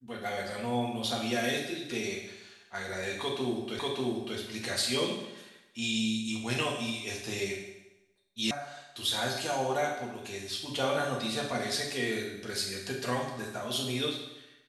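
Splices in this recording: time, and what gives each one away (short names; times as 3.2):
3.79 repeat of the last 0.59 s
8.51 sound cut off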